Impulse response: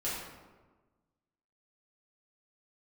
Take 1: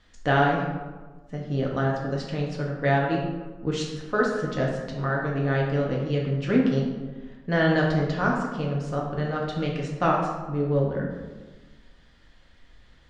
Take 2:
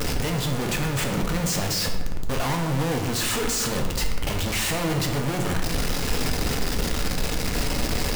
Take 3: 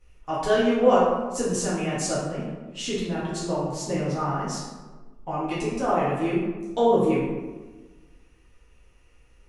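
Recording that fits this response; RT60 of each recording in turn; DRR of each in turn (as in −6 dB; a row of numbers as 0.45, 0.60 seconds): 3; 1.3, 1.3, 1.3 seconds; −2.5, 2.5, −9.5 decibels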